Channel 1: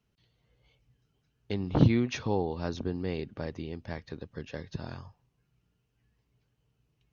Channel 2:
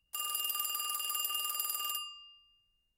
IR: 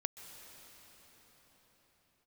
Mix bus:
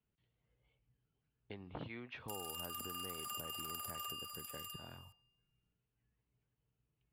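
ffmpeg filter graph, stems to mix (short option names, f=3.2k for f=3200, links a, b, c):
-filter_complex "[0:a]lowpass=f=3.1k:w=0.5412,lowpass=f=3.1k:w=1.3066,volume=-10.5dB,asplit=2[a][b];[1:a]adelay=2150,volume=-1dB,asplit=3[c][d][e];[d]volume=-12.5dB[f];[e]volume=-10dB[g];[b]apad=whole_len=225935[h];[c][h]sidechaincompress=threshold=-43dB:ratio=8:attack=16:release=306[i];[2:a]atrim=start_sample=2205[j];[f][j]afir=irnorm=-1:irlink=0[k];[g]aecho=0:1:600:1[l];[a][i][k][l]amix=inputs=4:normalize=0,acrossover=split=580|1800[m][n][o];[m]acompressor=threshold=-50dB:ratio=4[p];[n]acompressor=threshold=-47dB:ratio=4[q];[o]acompressor=threshold=-46dB:ratio=4[r];[p][q][r]amix=inputs=3:normalize=0"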